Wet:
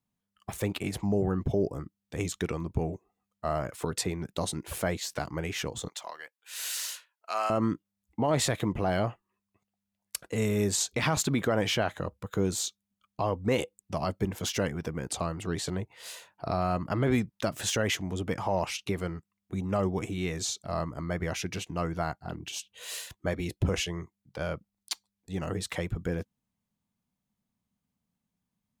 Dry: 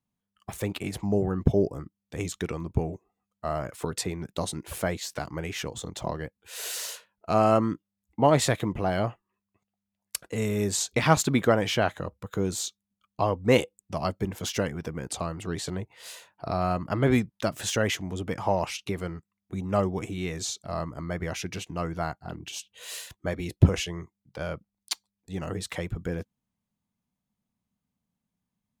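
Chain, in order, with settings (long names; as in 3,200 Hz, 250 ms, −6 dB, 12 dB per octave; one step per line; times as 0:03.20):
0:05.88–0:07.50: high-pass filter 1,200 Hz 12 dB per octave
brickwall limiter −16.5 dBFS, peak gain reduction 12 dB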